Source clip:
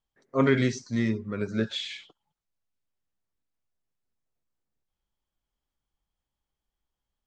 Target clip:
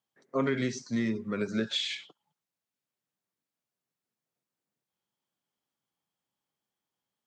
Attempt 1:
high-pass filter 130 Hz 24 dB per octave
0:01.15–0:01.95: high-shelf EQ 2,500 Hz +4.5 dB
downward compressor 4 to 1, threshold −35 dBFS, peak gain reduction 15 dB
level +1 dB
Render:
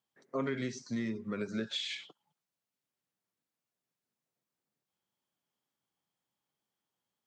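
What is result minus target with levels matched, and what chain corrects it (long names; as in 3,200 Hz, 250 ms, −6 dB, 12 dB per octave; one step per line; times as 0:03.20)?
downward compressor: peak gain reduction +6 dB
high-pass filter 130 Hz 24 dB per octave
0:01.15–0:01.95: high-shelf EQ 2,500 Hz +4.5 dB
downward compressor 4 to 1, threshold −27 dBFS, peak gain reduction 9 dB
level +1 dB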